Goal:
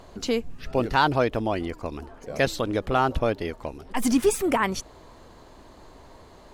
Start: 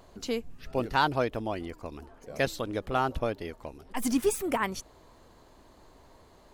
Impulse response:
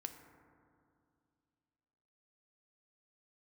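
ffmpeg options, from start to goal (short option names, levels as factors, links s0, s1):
-filter_complex "[0:a]highshelf=f=12000:g=-10,asplit=2[s0][s1];[s1]alimiter=limit=0.0668:level=0:latency=1,volume=0.794[s2];[s0][s2]amix=inputs=2:normalize=0,volume=1.33"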